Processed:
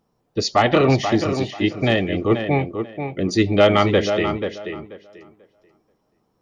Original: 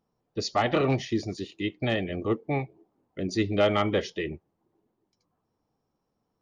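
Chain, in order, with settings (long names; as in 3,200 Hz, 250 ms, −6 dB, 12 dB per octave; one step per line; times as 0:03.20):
tape delay 486 ms, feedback 22%, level −6.5 dB, low-pass 3,100 Hz
level +8.5 dB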